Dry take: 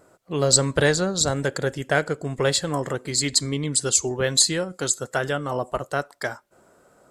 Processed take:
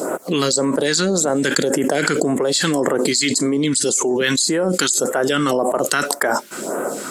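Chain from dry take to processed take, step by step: HPF 220 Hz 24 dB/oct; phaser stages 2, 1.8 Hz, lowest notch 550–4400 Hz; fast leveller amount 100%; gain -5.5 dB

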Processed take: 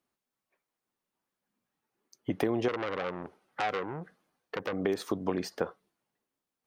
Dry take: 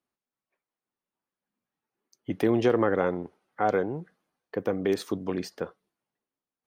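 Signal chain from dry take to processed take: compressor 4:1, threshold -32 dBFS, peak gain reduction 12.5 dB; dynamic EQ 910 Hz, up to +5 dB, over -49 dBFS, Q 0.81; 2.68–4.73 core saturation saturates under 3700 Hz; gain +3.5 dB

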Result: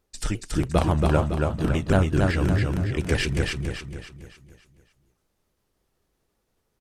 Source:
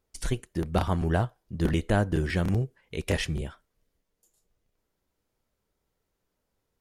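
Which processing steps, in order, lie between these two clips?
repeated pitch sweeps -4 st, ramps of 0.175 s; feedback echo 0.279 s, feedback 43%, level -3 dB; gain +4.5 dB

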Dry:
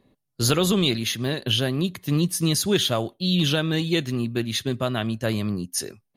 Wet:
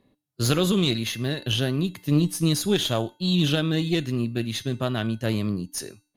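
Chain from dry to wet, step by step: resonator 300 Hz, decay 0.42 s, harmonics odd, mix 60%; added harmonics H 2 -10 dB, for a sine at -15 dBFS; harmonic-percussive split harmonic +5 dB; gain +2.5 dB

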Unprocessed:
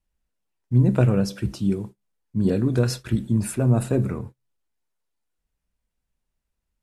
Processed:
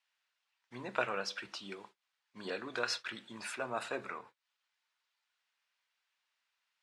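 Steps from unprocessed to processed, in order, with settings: Butterworth band-pass 2100 Hz, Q 0.58; mismatched tape noise reduction encoder only; gain +1 dB

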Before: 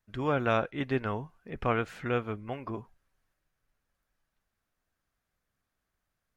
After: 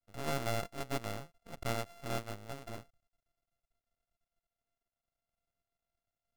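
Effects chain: sample sorter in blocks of 64 samples; half-wave rectifier; gain -4.5 dB

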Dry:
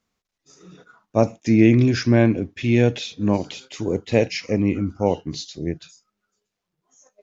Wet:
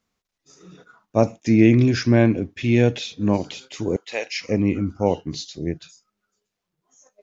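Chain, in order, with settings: 3.96–4.41 HPF 890 Hz 12 dB/oct

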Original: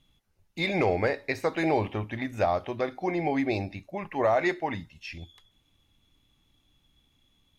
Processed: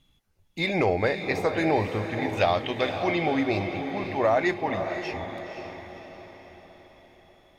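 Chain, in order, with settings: 2.29–3.26 bell 3200 Hz +14.5 dB 1 oct; diffused feedback echo 0.528 s, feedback 50%, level -7.5 dB; gain +1.5 dB

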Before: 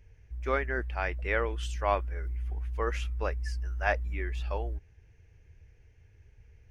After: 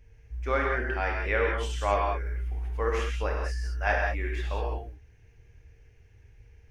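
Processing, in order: non-linear reverb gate 0.22 s flat, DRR -1.5 dB

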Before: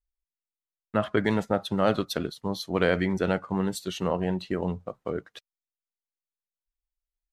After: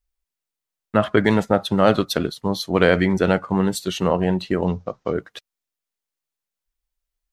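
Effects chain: 4.66–5.14 resonant high shelf 7900 Hz -12.5 dB, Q 3; gain +7.5 dB

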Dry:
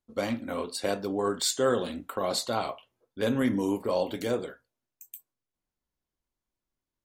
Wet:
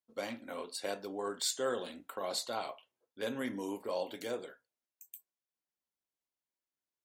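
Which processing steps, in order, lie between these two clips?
HPF 490 Hz 6 dB/oct; bell 1200 Hz -4 dB 0.25 oct; gain -6 dB

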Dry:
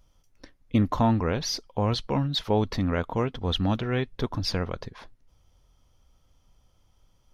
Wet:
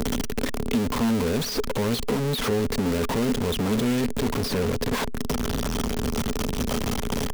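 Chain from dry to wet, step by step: infinite clipping; small resonant body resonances 240/420 Hz, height 13 dB, ringing for 65 ms; three-band squash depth 70%

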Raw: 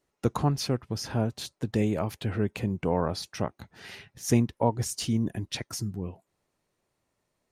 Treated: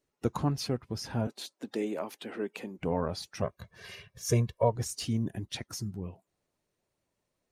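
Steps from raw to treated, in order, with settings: bin magnitudes rounded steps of 15 dB; 1.27–2.79 HPF 250 Hz 24 dB/oct; 3.42–4.76 comb 1.8 ms, depth 90%; gain -3.5 dB

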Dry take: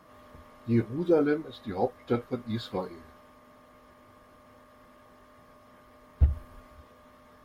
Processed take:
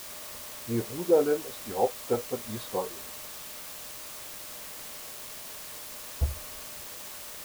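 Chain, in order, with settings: band shelf 670 Hz +9 dB; requantised 6-bit, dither triangular; gain -6 dB

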